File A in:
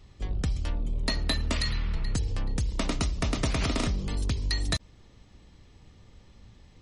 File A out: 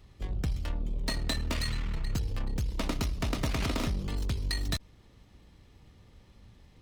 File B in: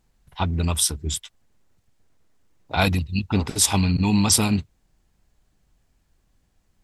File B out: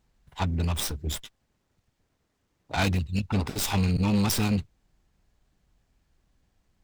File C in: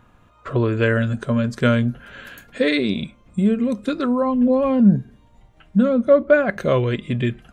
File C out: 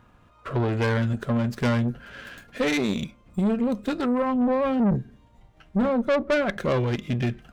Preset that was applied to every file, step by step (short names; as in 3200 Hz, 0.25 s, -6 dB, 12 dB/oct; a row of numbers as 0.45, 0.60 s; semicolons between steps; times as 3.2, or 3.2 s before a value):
tube stage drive 18 dB, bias 0.5; running maximum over 3 samples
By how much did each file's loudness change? -3.0, -5.5, -5.5 LU